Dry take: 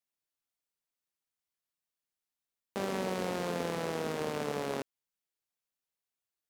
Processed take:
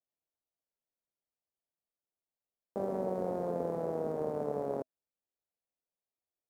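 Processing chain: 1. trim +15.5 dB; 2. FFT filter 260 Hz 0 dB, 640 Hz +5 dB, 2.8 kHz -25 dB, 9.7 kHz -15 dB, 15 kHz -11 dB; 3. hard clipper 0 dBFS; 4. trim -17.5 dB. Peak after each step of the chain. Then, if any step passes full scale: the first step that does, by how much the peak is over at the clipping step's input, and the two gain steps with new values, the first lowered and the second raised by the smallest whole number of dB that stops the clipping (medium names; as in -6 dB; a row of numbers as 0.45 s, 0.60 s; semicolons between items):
-4.0 dBFS, -4.5 dBFS, -4.5 dBFS, -22.0 dBFS; nothing clips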